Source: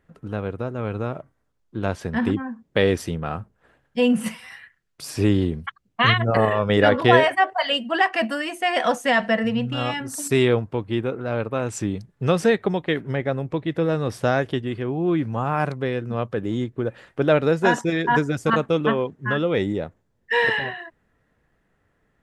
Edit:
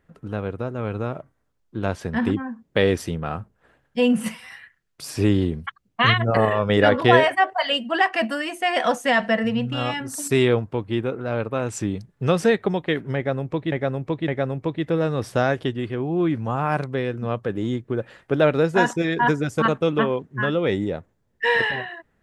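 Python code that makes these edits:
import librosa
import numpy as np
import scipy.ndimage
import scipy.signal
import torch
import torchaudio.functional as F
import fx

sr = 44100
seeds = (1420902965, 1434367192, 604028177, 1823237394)

y = fx.edit(x, sr, fx.repeat(start_s=13.16, length_s=0.56, count=3), tone=tone)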